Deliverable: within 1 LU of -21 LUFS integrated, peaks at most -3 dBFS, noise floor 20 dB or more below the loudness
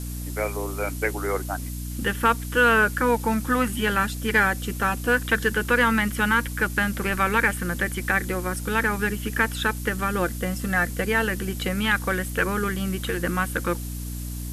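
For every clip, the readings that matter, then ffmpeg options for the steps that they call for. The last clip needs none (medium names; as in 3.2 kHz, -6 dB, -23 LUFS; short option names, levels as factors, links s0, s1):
hum 60 Hz; highest harmonic 300 Hz; hum level -30 dBFS; noise floor -32 dBFS; noise floor target -44 dBFS; loudness -24.0 LUFS; peak level -8.0 dBFS; loudness target -21.0 LUFS
-> -af "bandreject=f=60:t=h:w=6,bandreject=f=120:t=h:w=6,bandreject=f=180:t=h:w=6,bandreject=f=240:t=h:w=6,bandreject=f=300:t=h:w=6"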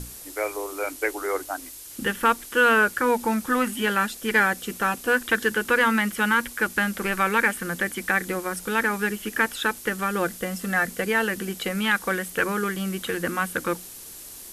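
hum not found; noise floor -42 dBFS; noise floor target -44 dBFS
-> -af "afftdn=nr=6:nf=-42"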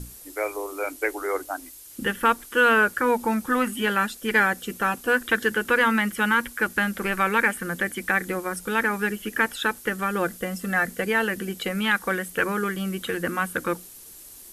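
noise floor -45 dBFS; loudness -24.0 LUFS; peak level -7.5 dBFS; loudness target -21.0 LUFS
-> -af "volume=1.41"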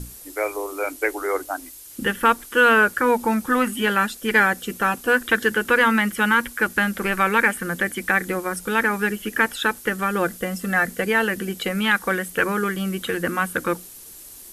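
loudness -21.0 LUFS; peak level -4.5 dBFS; noise floor -42 dBFS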